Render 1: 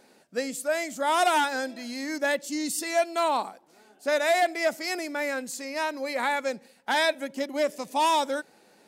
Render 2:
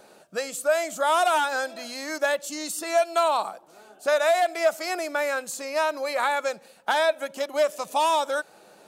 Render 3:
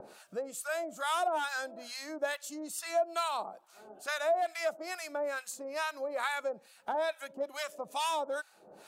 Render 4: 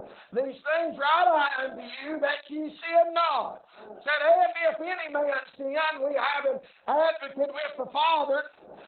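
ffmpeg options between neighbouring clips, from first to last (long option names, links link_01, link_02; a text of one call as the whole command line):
ffmpeg -i in.wav -filter_complex "[0:a]acrossover=split=660|2100[link_01][link_02][link_03];[link_01]acompressor=threshold=-41dB:ratio=4[link_04];[link_02]acompressor=threshold=-30dB:ratio=4[link_05];[link_03]acompressor=threshold=-36dB:ratio=4[link_06];[link_04][link_05][link_06]amix=inputs=3:normalize=0,equalizer=frequency=250:width_type=o:width=0.33:gain=-9,equalizer=frequency=630:width_type=o:width=0.33:gain=6,equalizer=frequency=1250:width_type=o:width=0.33:gain=6,equalizer=frequency=2000:width_type=o:width=0.33:gain=-7,equalizer=frequency=5000:width_type=o:width=0.33:gain=-4,volume=5.5dB" out.wav
ffmpeg -i in.wav -filter_complex "[0:a]acompressor=mode=upward:threshold=-34dB:ratio=2.5,acrossover=split=950[link_01][link_02];[link_01]aeval=exprs='val(0)*(1-1/2+1/2*cos(2*PI*2.3*n/s))':channel_layout=same[link_03];[link_02]aeval=exprs='val(0)*(1-1/2-1/2*cos(2*PI*2.3*n/s))':channel_layout=same[link_04];[link_03][link_04]amix=inputs=2:normalize=0,volume=-4.5dB" out.wav
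ffmpeg -i in.wav -af "aecho=1:1:66|132:0.224|0.0448,volume=9dB" -ar 48000 -c:a libopus -b:a 8k out.opus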